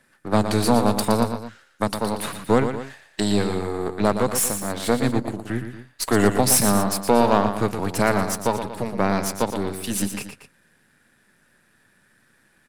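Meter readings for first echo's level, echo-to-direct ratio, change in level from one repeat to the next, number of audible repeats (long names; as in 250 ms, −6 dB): −8.5 dB, −7.5 dB, −6.0 dB, 2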